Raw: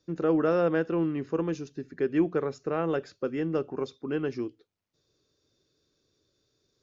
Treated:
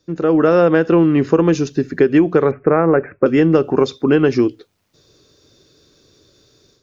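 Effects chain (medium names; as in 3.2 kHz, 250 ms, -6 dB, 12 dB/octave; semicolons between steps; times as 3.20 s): level rider gain up to 11.5 dB; 2.51–3.26 s: steep low-pass 2.4 kHz 96 dB/octave; compression 10:1, threshold -17 dBFS, peak gain reduction 9.5 dB; trim +8.5 dB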